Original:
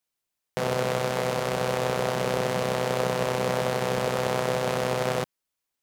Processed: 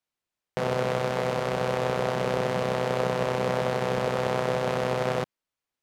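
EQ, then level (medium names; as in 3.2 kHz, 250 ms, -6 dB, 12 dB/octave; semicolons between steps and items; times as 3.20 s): low-pass 3.4 kHz 6 dB/octave; 0.0 dB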